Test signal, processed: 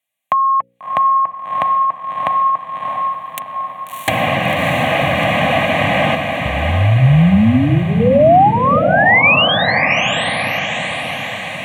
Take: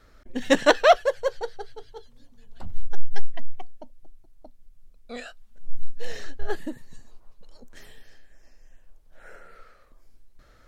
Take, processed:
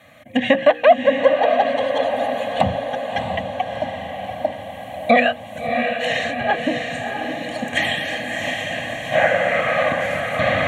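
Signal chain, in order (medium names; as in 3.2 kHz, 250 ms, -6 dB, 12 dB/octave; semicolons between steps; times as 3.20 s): recorder AGC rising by 10 dB/s; tone controls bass -6 dB, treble -4 dB; hum notches 60/120/180/240/300/360/420/480/540 Hz; comb of notches 440 Hz; compression 6:1, threshold -25 dBFS; low-pass that closes with the level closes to 2.1 kHz, closed at -26.5 dBFS; high-pass 110 Hz 24 dB/octave; peaking EQ 970 Hz -13 dB 0.21 oct; static phaser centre 1.4 kHz, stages 6; echo that smears into a reverb 662 ms, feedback 62%, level -5 dB; loudness maximiser +20 dB; trim -1 dB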